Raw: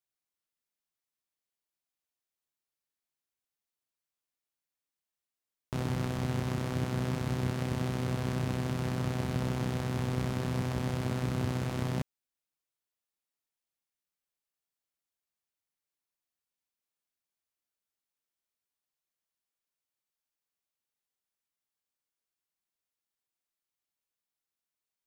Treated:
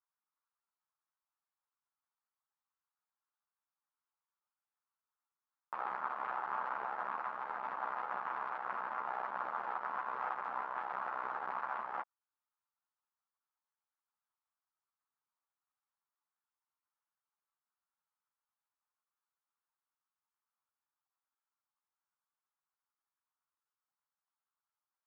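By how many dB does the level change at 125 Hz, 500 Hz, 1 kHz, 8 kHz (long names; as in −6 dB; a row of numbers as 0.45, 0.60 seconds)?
below −40 dB, −11.0 dB, +5.5 dB, below −30 dB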